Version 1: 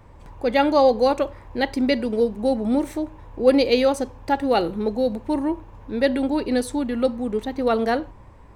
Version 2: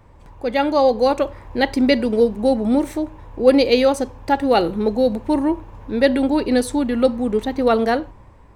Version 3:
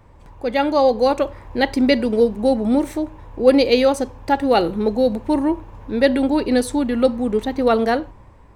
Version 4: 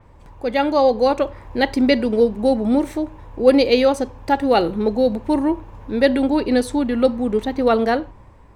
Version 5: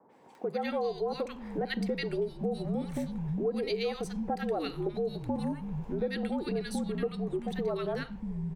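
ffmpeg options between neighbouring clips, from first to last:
-af "dynaudnorm=f=250:g=9:m=11.5dB,volume=-1dB"
-af anull
-af "adynamicequalizer=threshold=0.00794:dfrequency=5800:dqfactor=0.7:tfrequency=5800:tqfactor=0.7:attack=5:release=100:ratio=0.375:range=3:mode=cutabove:tftype=highshelf"
-filter_complex "[0:a]afreqshift=-57,acrossover=split=170|1200[a][b][c];[c]adelay=90[d];[a]adelay=640[e];[e][b][d]amix=inputs=3:normalize=0,acompressor=threshold=-26dB:ratio=4,volume=-4.5dB"

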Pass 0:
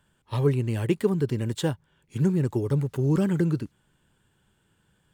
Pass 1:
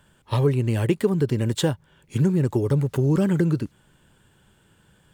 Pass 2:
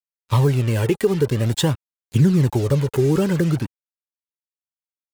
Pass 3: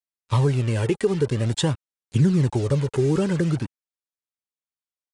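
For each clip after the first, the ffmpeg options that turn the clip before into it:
-af "equalizer=f=570:t=o:w=0.39:g=2.5,acompressor=threshold=-30dB:ratio=2,volume=8.5dB"
-af "acrusher=bits=5:mix=0:aa=0.5,aphaser=in_gain=1:out_gain=1:delay=2.6:decay=0.45:speed=0.49:type=triangular,alimiter=level_in=9.5dB:limit=-1dB:release=50:level=0:latency=1,volume=-6.5dB"
-af "aresample=22050,aresample=44100,volume=-3dB"

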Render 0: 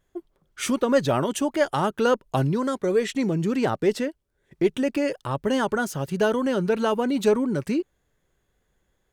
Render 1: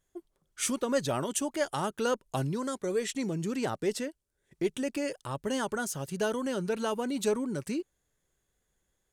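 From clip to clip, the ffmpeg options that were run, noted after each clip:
-af "equalizer=f=8.8k:w=0.59:g=11,volume=-8.5dB"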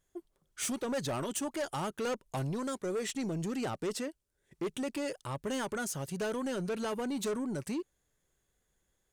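-af "asoftclip=type=tanh:threshold=-29.5dB"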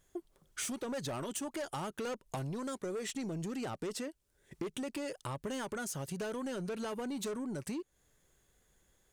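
-af "acompressor=threshold=-45dB:ratio=5,volume=7dB"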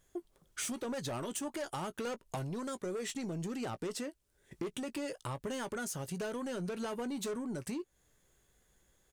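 -filter_complex "[0:a]asplit=2[a][b];[b]adelay=17,volume=-13dB[c];[a][c]amix=inputs=2:normalize=0"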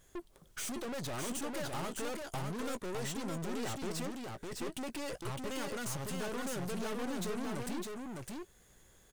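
-af "aeval=exprs='(tanh(224*val(0)+0.5)-tanh(0.5))/224':c=same,aecho=1:1:608:0.668,volume=8.5dB"

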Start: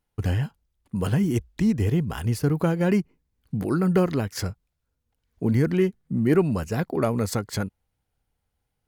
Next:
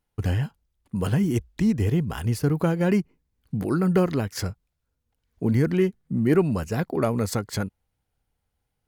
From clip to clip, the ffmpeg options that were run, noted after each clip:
-af anull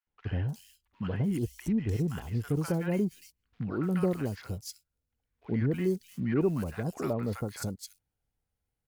-filter_complex "[0:a]acrusher=bits=8:mode=log:mix=0:aa=0.000001,acrossover=split=970|3600[a][b][c];[a]adelay=70[d];[c]adelay=300[e];[d][b][e]amix=inputs=3:normalize=0,volume=-7dB"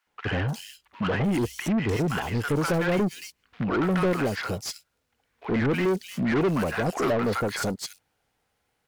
-filter_complex "[0:a]asplit=2[a][b];[b]highpass=f=720:p=1,volume=27dB,asoftclip=type=tanh:threshold=-16dB[c];[a][c]amix=inputs=2:normalize=0,lowpass=f=2.8k:p=1,volume=-6dB"

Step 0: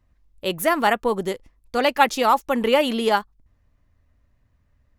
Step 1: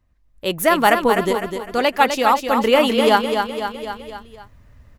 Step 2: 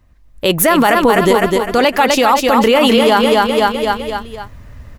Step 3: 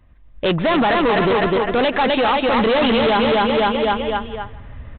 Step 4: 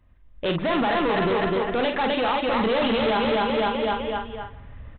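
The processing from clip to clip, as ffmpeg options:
-filter_complex "[0:a]asplit=2[a][b];[b]aecho=0:1:253|506|759|1012|1265:0.473|0.199|0.0835|0.0351|0.0147[c];[a][c]amix=inputs=2:normalize=0,dynaudnorm=f=100:g=9:m=15.5dB,volume=-1dB"
-af "alimiter=level_in=13.5dB:limit=-1dB:release=50:level=0:latency=1,volume=-1dB"
-af "aresample=8000,asoftclip=type=hard:threshold=-14dB,aresample=44100,aecho=1:1:161|322|483:0.112|0.0449|0.018"
-filter_complex "[0:a]asplit=2[a][b];[b]adelay=47,volume=-6.5dB[c];[a][c]amix=inputs=2:normalize=0,volume=-7dB"

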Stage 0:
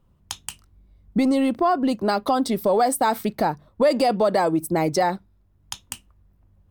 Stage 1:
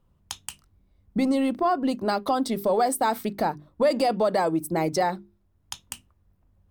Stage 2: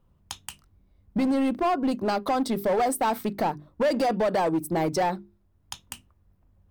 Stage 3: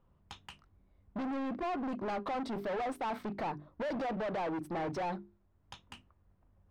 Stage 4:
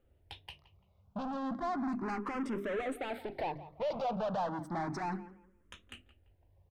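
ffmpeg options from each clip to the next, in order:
-af "bandreject=f=50:t=h:w=6,bandreject=f=100:t=h:w=6,bandreject=f=150:t=h:w=6,bandreject=f=200:t=h:w=6,bandreject=f=250:t=h:w=6,bandreject=f=300:t=h:w=6,bandreject=f=350:t=h:w=6,bandreject=f=400:t=h:w=6,volume=-3dB"
-filter_complex "[0:a]equalizer=f=8.1k:w=0.37:g=-3.5,asplit=2[a][b];[b]aeval=exprs='0.0708*(abs(mod(val(0)/0.0708+3,4)-2)-1)':c=same,volume=-5dB[c];[a][c]amix=inputs=2:normalize=0,volume=-2.5dB"
-filter_complex "[0:a]asoftclip=type=hard:threshold=-30.5dB,asplit=2[a][b];[b]highpass=f=720:p=1,volume=4dB,asoftclip=type=tanh:threshold=-30.5dB[c];[a][c]amix=inputs=2:normalize=0,lowpass=f=2.2k:p=1,volume=-6dB,aemphasis=mode=reproduction:type=50kf"
-filter_complex "[0:a]asplit=2[a][b];[b]adelay=170,lowpass=f=2.6k:p=1,volume=-16dB,asplit=2[c][d];[d]adelay=170,lowpass=f=2.6k:p=1,volume=0.28,asplit=2[e][f];[f]adelay=170,lowpass=f=2.6k:p=1,volume=0.28[g];[a][c][e][g]amix=inputs=4:normalize=0,asplit=2[h][i];[i]afreqshift=0.33[j];[h][j]amix=inputs=2:normalize=1,volume=3dB"

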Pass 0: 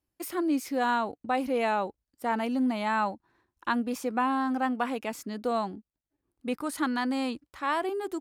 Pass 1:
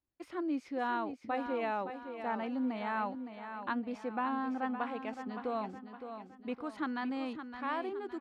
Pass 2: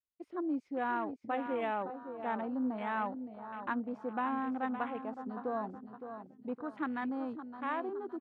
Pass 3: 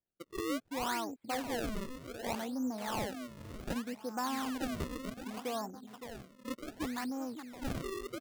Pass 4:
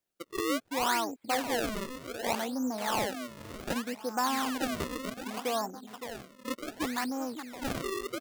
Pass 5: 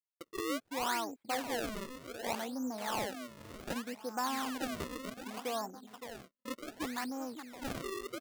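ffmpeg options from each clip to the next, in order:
-filter_complex "[0:a]lowpass=3.2k,asplit=2[a][b];[b]aecho=0:1:564|1128|1692|2256|2820:0.355|0.153|0.0656|0.0282|0.0121[c];[a][c]amix=inputs=2:normalize=0,volume=-7.5dB"
-af "afwtdn=0.00562"
-af "acrusher=samples=32:mix=1:aa=0.000001:lfo=1:lforange=51.2:lforate=0.66,volume=-1.5dB"
-af "lowshelf=f=220:g=-10.5,volume=7.5dB"
-af "agate=range=-38dB:threshold=-47dB:ratio=16:detection=peak,volume=-5.5dB"

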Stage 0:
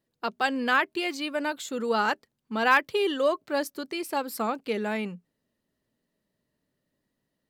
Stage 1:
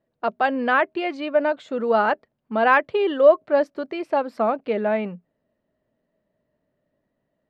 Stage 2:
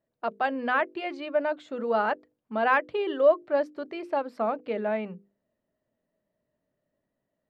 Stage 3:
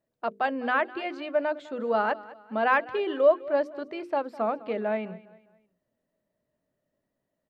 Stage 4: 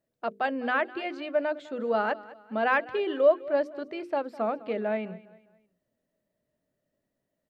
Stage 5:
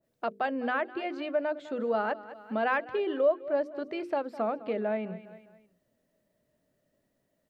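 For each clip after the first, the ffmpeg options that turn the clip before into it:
-af "lowpass=2.2k,equalizer=f=630:t=o:w=0.44:g=10,volume=3.5dB"
-af "bandreject=f=50:t=h:w=6,bandreject=f=100:t=h:w=6,bandreject=f=150:t=h:w=6,bandreject=f=200:t=h:w=6,bandreject=f=250:t=h:w=6,bandreject=f=300:t=h:w=6,bandreject=f=350:t=h:w=6,bandreject=f=400:t=h:w=6,bandreject=f=450:t=h:w=6,bandreject=f=500:t=h:w=6,volume=-6dB"
-af "aecho=1:1:204|408|612:0.112|0.0415|0.0154"
-af "equalizer=f=1k:t=o:w=0.68:g=-4"
-af "acompressor=threshold=-44dB:ratio=1.5,adynamicequalizer=threshold=0.00447:dfrequency=1500:dqfactor=0.7:tfrequency=1500:tqfactor=0.7:attack=5:release=100:ratio=0.375:range=3:mode=cutabove:tftype=highshelf,volume=5.5dB"

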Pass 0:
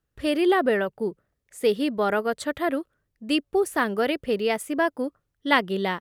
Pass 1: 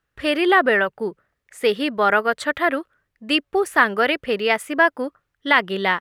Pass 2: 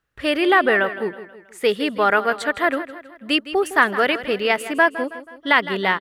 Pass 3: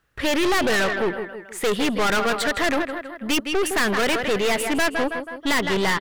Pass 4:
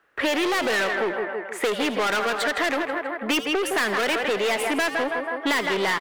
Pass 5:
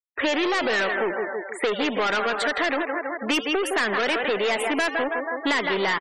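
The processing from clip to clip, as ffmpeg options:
-af "equalizer=f=1.7k:w=0.49:g=12,alimiter=level_in=0dB:limit=-1dB:release=50:level=0:latency=1,volume=-1dB"
-af "aecho=1:1:161|322|483|644:0.2|0.0938|0.0441|0.0207"
-af "aeval=exprs='(tanh(25.1*val(0)+0.4)-tanh(0.4))/25.1':c=same,volume=9dB"
-filter_complex "[0:a]acrossover=split=270 2600:gain=0.0708 1 0.251[a][b][c];[a][b][c]amix=inputs=3:normalize=0,asplit=5[d][e][f][g][h];[e]adelay=82,afreqshift=150,volume=-14dB[i];[f]adelay=164,afreqshift=300,volume=-21.3dB[j];[g]adelay=246,afreqshift=450,volume=-28.7dB[k];[h]adelay=328,afreqshift=600,volume=-36dB[l];[d][i][j][k][l]amix=inputs=5:normalize=0,acrossover=split=160|3000[m][n][o];[n]acompressor=threshold=-30dB:ratio=6[p];[m][p][o]amix=inputs=3:normalize=0,volume=7.5dB"
-af "afftfilt=real='re*gte(hypot(re,im),0.0224)':imag='im*gte(hypot(re,im),0.0224)':win_size=1024:overlap=0.75"

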